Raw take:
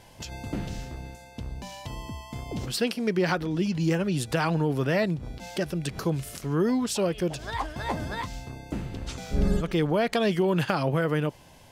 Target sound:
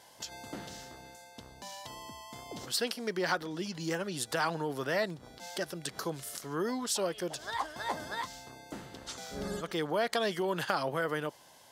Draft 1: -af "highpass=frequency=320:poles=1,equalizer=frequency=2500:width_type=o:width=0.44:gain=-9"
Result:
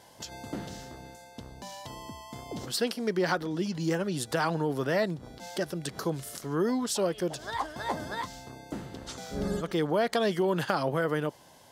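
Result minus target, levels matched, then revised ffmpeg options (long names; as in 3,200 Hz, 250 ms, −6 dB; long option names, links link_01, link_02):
250 Hz band +3.0 dB
-af "highpass=frequency=890:poles=1,equalizer=frequency=2500:width_type=o:width=0.44:gain=-9"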